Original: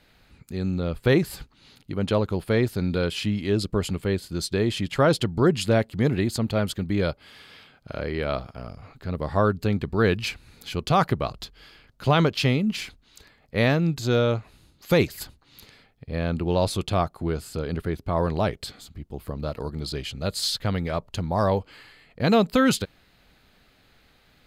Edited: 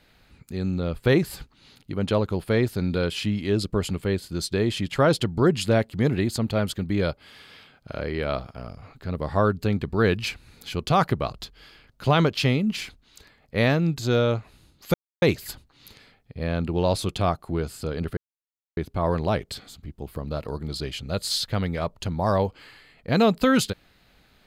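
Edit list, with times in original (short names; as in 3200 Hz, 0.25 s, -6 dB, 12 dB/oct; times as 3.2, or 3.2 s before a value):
14.94 insert silence 0.28 s
17.89 insert silence 0.60 s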